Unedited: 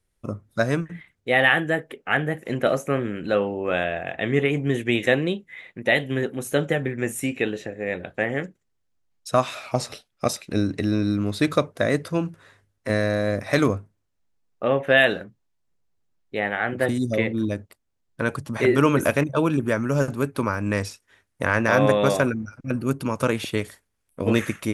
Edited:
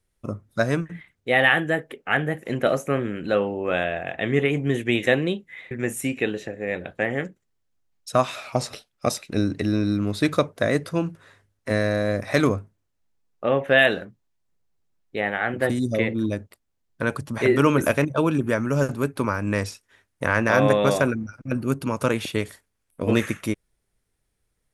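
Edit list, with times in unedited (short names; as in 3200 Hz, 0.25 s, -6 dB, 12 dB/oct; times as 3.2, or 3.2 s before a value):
5.71–6.9 cut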